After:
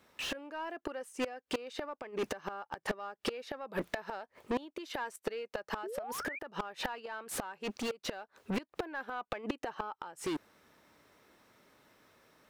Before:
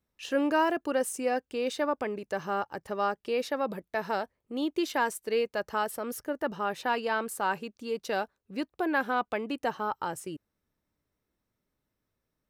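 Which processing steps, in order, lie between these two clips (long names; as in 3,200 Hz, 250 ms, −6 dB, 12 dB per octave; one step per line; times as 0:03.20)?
in parallel at −10 dB: hard clipping −31 dBFS, distortion −6 dB
on the sum: gate with flip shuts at −24 dBFS, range −40 dB
mid-hump overdrive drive 34 dB, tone 3,000 Hz, clips at −23 dBFS
sound drawn into the spectrogram rise, 0:05.83–0:06.39, 340–2,500 Hz −39 dBFS
speech leveller within 5 dB 0.5 s
level −1 dB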